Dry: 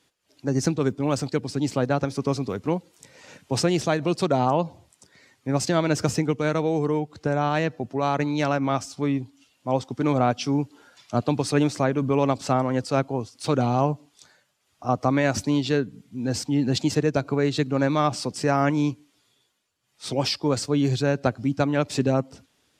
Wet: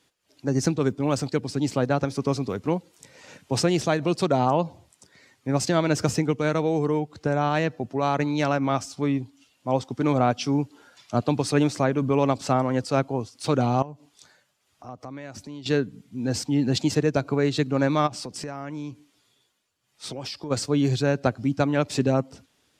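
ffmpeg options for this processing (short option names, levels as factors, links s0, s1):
-filter_complex "[0:a]asettb=1/sr,asplit=3[s0][s1][s2];[s0]atrim=end=13.824[s3];[s1]atrim=start=13.82:end=15.66,asetpts=PTS-STARTPTS,afade=t=in:d=0.004:c=qsin,afade=t=out:st=1.836:d=0.004:c=qsin,acompressor=threshold=0.00708:ratio=2.5:attack=3.2:release=140:knee=1:detection=peak[s4];[s2]atrim=start=15.656[s5];[s3][s4]acrossfade=d=0.004:c1=hsin:c2=qsin[s6];[s6][s5]acrossfade=d=0.004:c1=qsin:c2=hsin,asplit=3[s7][s8][s9];[s7]afade=t=out:st=18.06:d=0.02[s10];[s8]acompressor=threshold=0.0282:ratio=5:attack=3.2:release=140:knee=1:detection=peak,afade=t=in:st=18.06:d=0.02,afade=t=out:st=20.5:d=0.02[s11];[s9]afade=t=in:st=20.5:d=0.02[s12];[s10][s11][s12]amix=inputs=3:normalize=0"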